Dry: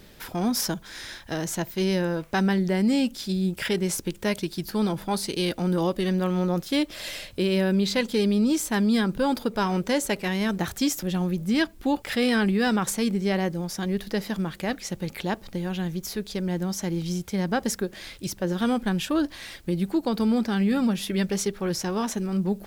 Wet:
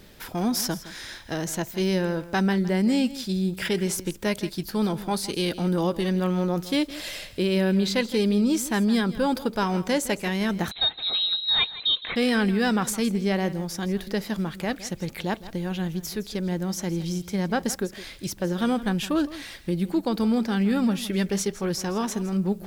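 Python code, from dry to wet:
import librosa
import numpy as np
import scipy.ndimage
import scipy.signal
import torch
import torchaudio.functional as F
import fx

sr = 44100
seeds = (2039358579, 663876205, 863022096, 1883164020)

y = x + 10.0 ** (-16.0 / 20.0) * np.pad(x, (int(163 * sr / 1000.0), 0))[:len(x)]
y = fx.freq_invert(y, sr, carrier_hz=4000, at=(10.71, 12.16))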